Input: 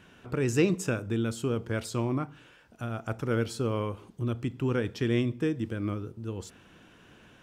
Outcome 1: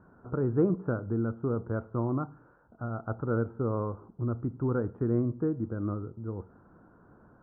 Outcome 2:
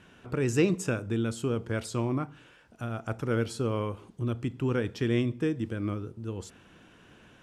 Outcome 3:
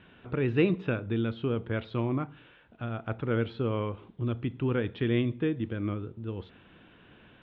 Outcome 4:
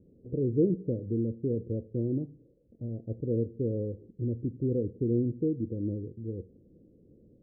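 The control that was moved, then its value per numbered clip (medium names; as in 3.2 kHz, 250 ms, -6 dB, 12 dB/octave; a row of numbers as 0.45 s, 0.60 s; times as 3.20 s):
Chebyshev low-pass, frequency: 1.4 kHz, 12 kHz, 3.7 kHz, 520 Hz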